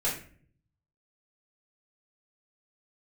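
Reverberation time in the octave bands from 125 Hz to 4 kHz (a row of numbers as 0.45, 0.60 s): 1.1, 0.80, 0.55, 0.40, 0.45, 0.35 s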